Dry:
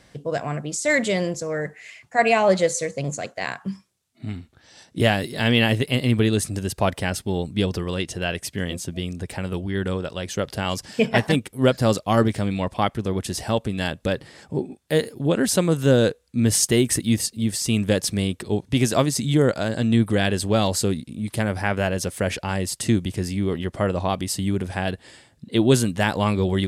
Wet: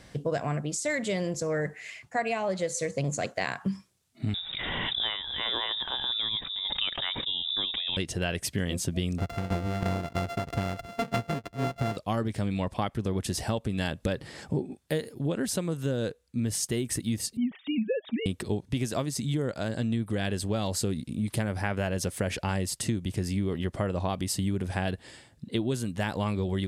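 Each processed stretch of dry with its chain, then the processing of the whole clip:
0:04.34–0:07.97: voice inversion scrambler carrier 3,700 Hz + background raised ahead of every attack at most 42 dB per second
0:09.18–0:11.97: samples sorted by size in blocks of 64 samples + low-pass filter 2,500 Hz 6 dB per octave + shaped tremolo saw down 3.1 Hz, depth 85%
0:17.37–0:18.26: three sine waves on the formant tracks + notch comb filter 350 Hz
whole clip: speech leveller 0.5 s; low-shelf EQ 210 Hz +3.5 dB; downward compressor, threshold −19 dBFS; level −6 dB

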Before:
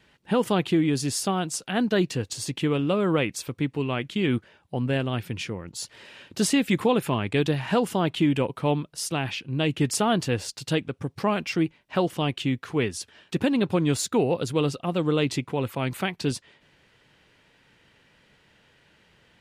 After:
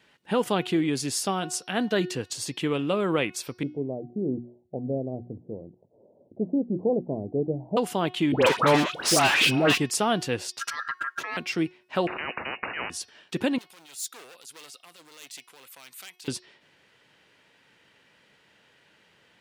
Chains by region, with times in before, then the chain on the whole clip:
0:03.63–0:07.77: Butterworth low-pass 690 Hz 48 dB per octave + mains-hum notches 60/120/180/240/300/360 Hz
0:08.32–0:09.78: mid-hump overdrive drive 32 dB, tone 4,100 Hz, clips at −11 dBFS + all-pass dispersion highs, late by 104 ms, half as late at 1,300 Hz
0:10.59–0:11.37: parametric band 65 Hz +10 dB 2.4 octaves + compressor whose output falls as the input rises −28 dBFS + ring modulation 1,500 Hz
0:12.07–0:12.90: low-shelf EQ 220 Hz −9 dB + voice inversion scrambler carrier 2,700 Hz + every bin compressed towards the loudest bin 10 to 1
0:13.58–0:16.28: hard clipping −24 dBFS + first difference + transient designer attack −9 dB, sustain +3 dB
whole clip: high-pass filter 260 Hz 6 dB per octave; hum removal 364.2 Hz, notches 16

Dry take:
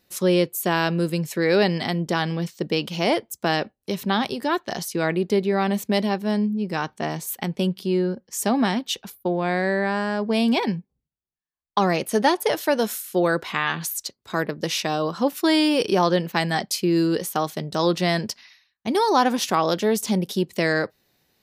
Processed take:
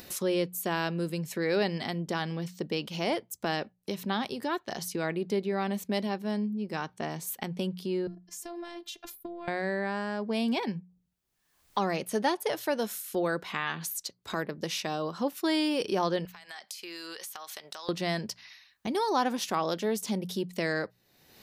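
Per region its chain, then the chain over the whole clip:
0:08.07–0:09.48: downward compressor 3 to 1, threshold −40 dBFS + phases set to zero 345 Hz
0:16.25–0:17.89: high-pass filter 1,100 Hz + downward compressor 16 to 1, threshold −40 dBFS
whole clip: mains-hum notches 60/120/180 Hz; upward compression, threshold −21 dBFS; level −8.5 dB

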